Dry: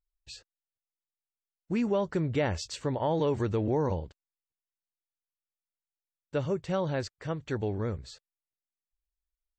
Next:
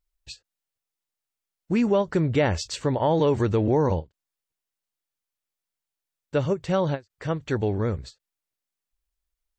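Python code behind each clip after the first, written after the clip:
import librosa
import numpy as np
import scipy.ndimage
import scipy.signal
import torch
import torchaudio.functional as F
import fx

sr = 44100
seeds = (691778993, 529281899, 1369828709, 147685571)

y = fx.end_taper(x, sr, db_per_s=380.0)
y = y * 10.0 ** (6.5 / 20.0)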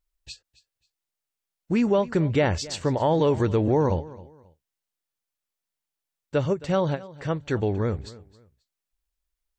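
y = fx.echo_feedback(x, sr, ms=268, feedback_pct=27, wet_db=-19.5)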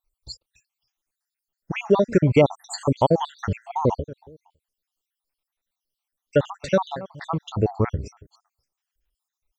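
y = fx.spec_dropout(x, sr, seeds[0], share_pct=67)
y = y * 10.0 ** (6.5 / 20.0)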